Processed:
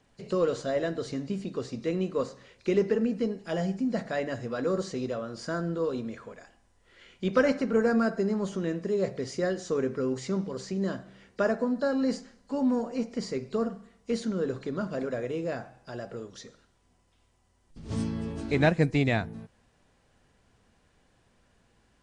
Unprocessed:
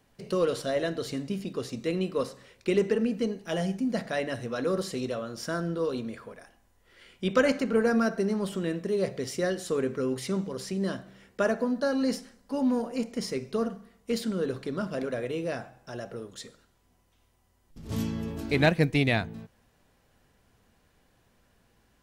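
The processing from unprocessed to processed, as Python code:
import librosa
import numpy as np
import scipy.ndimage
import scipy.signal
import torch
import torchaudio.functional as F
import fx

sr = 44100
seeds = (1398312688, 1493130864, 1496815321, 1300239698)

y = fx.freq_compress(x, sr, knee_hz=3900.0, ratio=1.5)
y = fx.dynamic_eq(y, sr, hz=3100.0, q=1.3, threshold_db=-52.0, ratio=4.0, max_db=-6)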